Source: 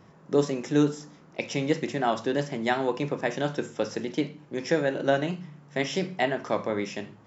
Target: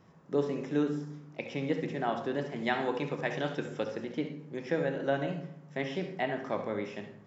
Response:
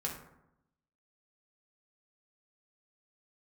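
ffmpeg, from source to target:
-filter_complex "[0:a]asettb=1/sr,asplit=3[link_01][link_02][link_03];[link_01]atrim=end=2.564[link_04];[link_02]atrim=start=2.56:end=3.84,asetpts=PTS-STARTPTS,afade=type=in:duration=0.004:curve=qsin,afade=type=out:start_time=1.276:duration=0.004:curve=qsin,highshelf=frequency=2400:gain=10[link_05];[link_03]atrim=start=3.836[link_06];[link_04][link_05]acrossfade=duration=0.004:curve1=hsin:curve2=qsin[link_07];[link_07][link_06]acrossfade=duration=0.004:curve1=qsin:curve2=hsin,acrossover=split=3700[link_08][link_09];[link_09]acompressor=threshold=-57dB:ratio=4:attack=1:release=60[link_10];[link_08][link_10]amix=inputs=2:normalize=0,asplit=2[link_11][link_12];[1:a]atrim=start_sample=2205,adelay=66[link_13];[link_12][link_13]afir=irnorm=-1:irlink=0,volume=-10dB[link_14];[link_11][link_14]amix=inputs=2:normalize=0,volume=-6.5dB"

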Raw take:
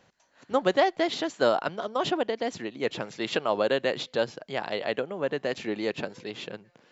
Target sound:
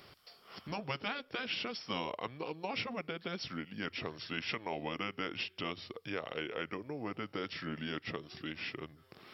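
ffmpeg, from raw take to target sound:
ffmpeg -i in.wav -af "aemphasis=mode=production:type=75kf,bandreject=frequency=60:width_type=h:width=6,bandreject=frequency=120:width_type=h:width=6,afftfilt=real='re*lt(hypot(re,im),0.355)':imag='im*lt(hypot(re,im),0.355)':win_size=1024:overlap=0.75,bandreject=frequency=5400:width=26,adynamicequalizer=threshold=0.00282:dfrequency=620:dqfactor=8:tfrequency=620:tqfactor=8:attack=5:release=100:ratio=0.375:range=1.5:mode=boostabove:tftype=bell,acompressor=threshold=-49dB:ratio=2,asetrate=32667,aresample=44100,volume=3dB" out.wav

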